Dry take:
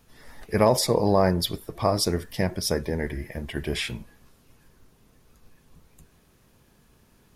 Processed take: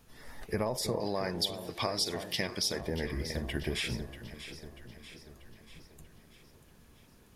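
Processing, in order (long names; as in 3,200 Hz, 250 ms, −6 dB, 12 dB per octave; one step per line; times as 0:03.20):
0:01.00–0:02.81: meter weighting curve D
downward compressor 6 to 1, threshold −28 dBFS, peak gain reduction 15 dB
delay that swaps between a low-pass and a high-pass 319 ms, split 1,000 Hz, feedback 73%, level −9 dB
level −1.5 dB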